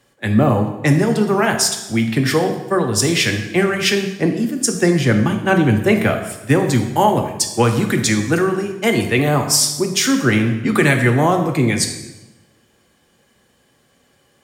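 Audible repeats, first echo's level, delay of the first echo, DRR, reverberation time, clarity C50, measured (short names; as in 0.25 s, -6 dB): none, none, none, 4.0 dB, 1.0 s, 7.5 dB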